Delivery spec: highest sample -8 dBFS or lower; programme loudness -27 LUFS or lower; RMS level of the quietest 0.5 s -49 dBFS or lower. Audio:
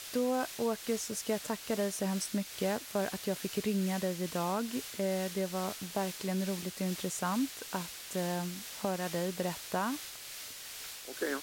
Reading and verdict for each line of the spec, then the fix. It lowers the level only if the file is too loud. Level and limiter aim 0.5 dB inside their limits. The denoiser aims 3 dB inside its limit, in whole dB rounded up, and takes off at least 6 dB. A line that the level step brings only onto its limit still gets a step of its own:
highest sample -19.0 dBFS: OK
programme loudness -35.0 LUFS: OK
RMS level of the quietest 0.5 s -46 dBFS: fail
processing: denoiser 6 dB, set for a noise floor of -46 dBFS

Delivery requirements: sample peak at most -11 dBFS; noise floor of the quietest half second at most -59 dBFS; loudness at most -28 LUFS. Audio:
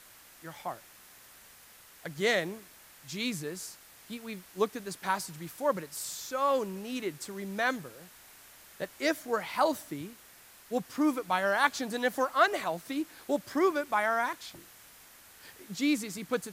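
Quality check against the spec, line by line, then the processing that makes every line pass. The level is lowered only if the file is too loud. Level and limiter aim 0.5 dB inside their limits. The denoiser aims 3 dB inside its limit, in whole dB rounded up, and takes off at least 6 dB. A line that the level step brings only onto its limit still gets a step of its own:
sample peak -9.5 dBFS: fail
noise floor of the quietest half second -55 dBFS: fail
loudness -31.5 LUFS: OK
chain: denoiser 7 dB, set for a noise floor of -55 dBFS; limiter -11.5 dBFS

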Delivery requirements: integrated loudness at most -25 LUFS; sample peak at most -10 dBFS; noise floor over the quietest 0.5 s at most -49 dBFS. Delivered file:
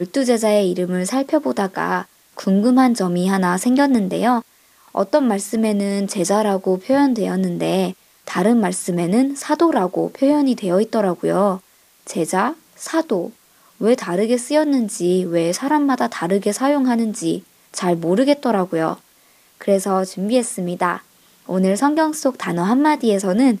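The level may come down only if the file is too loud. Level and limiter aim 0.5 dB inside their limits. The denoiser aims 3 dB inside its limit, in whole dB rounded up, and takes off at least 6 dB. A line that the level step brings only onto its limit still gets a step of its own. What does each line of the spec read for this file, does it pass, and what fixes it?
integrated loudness -18.5 LUFS: fail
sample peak -3.5 dBFS: fail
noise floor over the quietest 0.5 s -54 dBFS: OK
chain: gain -7 dB

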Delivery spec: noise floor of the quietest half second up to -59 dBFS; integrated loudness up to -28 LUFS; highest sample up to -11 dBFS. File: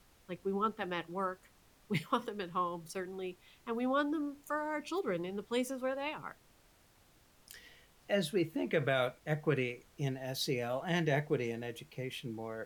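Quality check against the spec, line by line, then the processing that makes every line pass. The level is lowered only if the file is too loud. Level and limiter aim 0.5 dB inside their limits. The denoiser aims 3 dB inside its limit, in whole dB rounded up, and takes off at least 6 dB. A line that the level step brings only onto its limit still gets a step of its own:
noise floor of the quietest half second -66 dBFS: OK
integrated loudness -36.0 LUFS: OK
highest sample -19.0 dBFS: OK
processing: none

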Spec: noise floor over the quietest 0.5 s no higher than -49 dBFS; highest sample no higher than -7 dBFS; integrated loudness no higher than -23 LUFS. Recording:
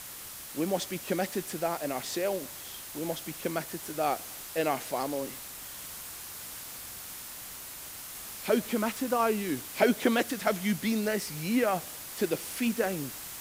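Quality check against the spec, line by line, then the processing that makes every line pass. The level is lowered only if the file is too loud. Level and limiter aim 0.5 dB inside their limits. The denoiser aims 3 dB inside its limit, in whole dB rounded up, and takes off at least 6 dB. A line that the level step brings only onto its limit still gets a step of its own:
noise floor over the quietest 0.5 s -43 dBFS: fail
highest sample -10.5 dBFS: OK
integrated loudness -32.0 LUFS: OK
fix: denoiser 9 dB, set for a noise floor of -43 dBFS

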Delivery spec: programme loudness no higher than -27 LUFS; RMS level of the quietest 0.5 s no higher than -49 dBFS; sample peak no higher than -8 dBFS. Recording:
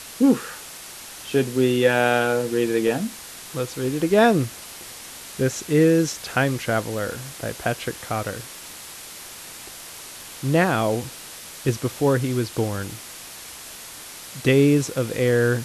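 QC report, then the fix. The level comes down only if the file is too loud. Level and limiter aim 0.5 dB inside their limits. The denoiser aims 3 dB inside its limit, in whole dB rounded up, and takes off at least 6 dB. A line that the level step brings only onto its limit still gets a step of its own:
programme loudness -22.0 LUFS: fail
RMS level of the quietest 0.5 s -39 dBFS: fail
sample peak -5.5 dBFS: fail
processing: denoiser 8 dB, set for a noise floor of -39 dBFS; gain -5.5 dB

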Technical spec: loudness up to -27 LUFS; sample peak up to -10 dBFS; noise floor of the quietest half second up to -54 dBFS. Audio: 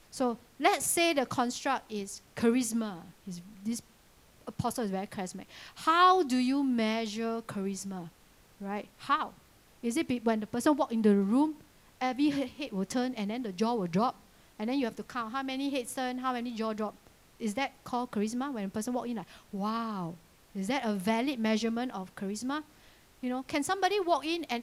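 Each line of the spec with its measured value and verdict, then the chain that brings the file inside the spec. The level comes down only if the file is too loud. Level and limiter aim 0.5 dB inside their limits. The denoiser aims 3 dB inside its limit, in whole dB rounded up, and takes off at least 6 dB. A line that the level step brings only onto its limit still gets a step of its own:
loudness -31.5 LUFS: OK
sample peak -12.0 dBFS: OK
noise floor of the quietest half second -61 dBFS: OK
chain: none

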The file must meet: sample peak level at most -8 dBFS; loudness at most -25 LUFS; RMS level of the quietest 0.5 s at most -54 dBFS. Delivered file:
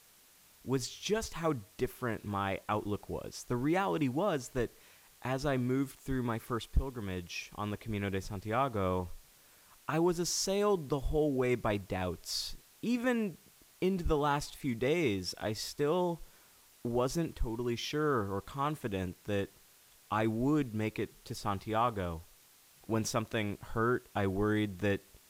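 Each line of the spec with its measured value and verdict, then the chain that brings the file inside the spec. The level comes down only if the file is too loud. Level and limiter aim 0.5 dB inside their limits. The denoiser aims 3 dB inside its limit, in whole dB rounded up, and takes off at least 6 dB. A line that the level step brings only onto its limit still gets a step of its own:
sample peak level -17.0 dBFS: OK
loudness -34.0 LUFS: OK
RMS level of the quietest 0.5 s -62 dBFS: OK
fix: none

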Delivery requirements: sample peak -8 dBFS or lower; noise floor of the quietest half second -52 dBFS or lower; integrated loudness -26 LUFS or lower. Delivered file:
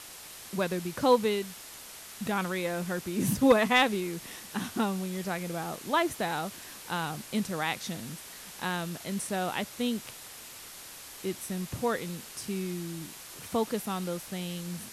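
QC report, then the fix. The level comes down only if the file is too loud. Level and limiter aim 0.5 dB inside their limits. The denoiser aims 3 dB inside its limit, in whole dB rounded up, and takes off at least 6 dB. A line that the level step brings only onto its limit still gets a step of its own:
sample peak -12.0 dBFS: OK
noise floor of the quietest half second -46 dBFS: fail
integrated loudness -31.0 LUFS: OK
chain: denoiser 9 dB, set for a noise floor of -46 dBFS

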